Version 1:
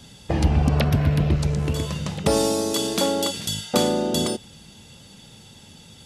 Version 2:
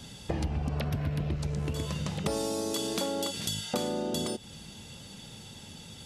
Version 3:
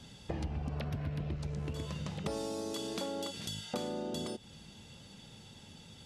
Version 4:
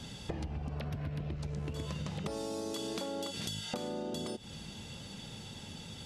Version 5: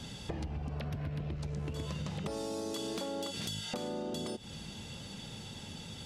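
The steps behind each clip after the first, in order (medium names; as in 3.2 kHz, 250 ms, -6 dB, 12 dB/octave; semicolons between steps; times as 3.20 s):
compression 4:1, threshold -30 dBFS, peak gain reduction 14.5 dB
treble shelf 9.1 kHz -10.5 dB; trim -6 dB
compression, threshold -42 dBFS, peak gain reduction 10.5 dB; trim +7 dB
saturation -27.5 dBFS, distortion -24 dB; trim +1 dB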